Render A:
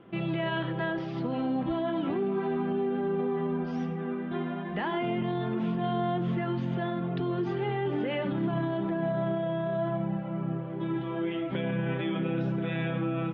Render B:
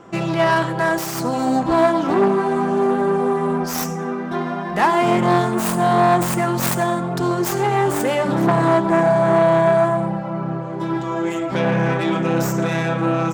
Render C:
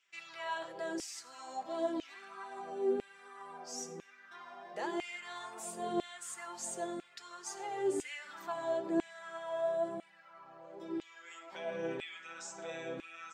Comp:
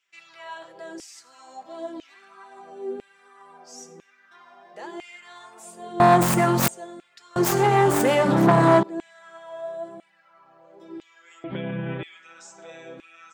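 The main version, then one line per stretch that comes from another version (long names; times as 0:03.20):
C
0:06.00–0:06.68: punch in from B
0:07.36–0:08.83: punch in from B
0:11.44–0:12.03: punch in from A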